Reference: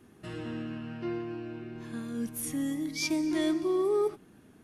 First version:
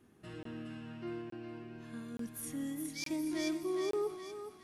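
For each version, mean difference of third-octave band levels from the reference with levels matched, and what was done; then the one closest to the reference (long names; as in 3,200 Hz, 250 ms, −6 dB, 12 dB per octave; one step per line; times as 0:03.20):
3.0 dB: feedback echo with a high-pass in the loop 414 ms, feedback 48%, high-pass 910 Hz, level −4 dB
regular buffer underruns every 0.87 s, samples 1,024, zero, from 0:00.43
level −7.5 dB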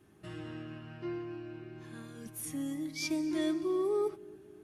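1.5 dB: notch comb filter 240 Hz
delay with a low-pass on its return 271 ms, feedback 59%, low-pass 550 Hz, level −20.5 dB
level −3.5 dB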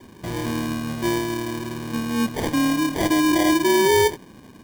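8.0 dB: in parallel at 0 dB: brickwall limiter −24.5 dBFS, peak gain reduction 6.5 dB
on the sum: decimation without filtering 33×
level +5.5 dB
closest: second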